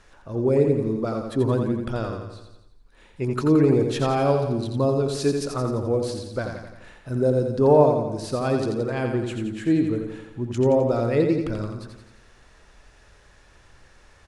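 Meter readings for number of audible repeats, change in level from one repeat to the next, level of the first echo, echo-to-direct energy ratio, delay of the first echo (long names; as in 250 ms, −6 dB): 6, −5.0 dB, −5.5 dB, −4.0 dB, 86 ms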